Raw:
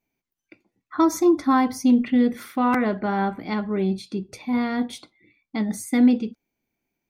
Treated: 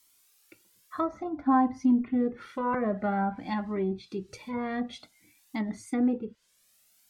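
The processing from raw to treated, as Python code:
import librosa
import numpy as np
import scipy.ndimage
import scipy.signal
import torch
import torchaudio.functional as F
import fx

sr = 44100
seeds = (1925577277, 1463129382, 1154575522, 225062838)

y = fx.dmg_noise_colour(x, sr, seeds[0], colour='blue', level_db=-57.0)
y = fx.env_lowpass_down(y, sr, base_hz=1200.0, full_db=-18.0)
y = fx.comb_cascade(y, sr, direction='rising', hz=0.53)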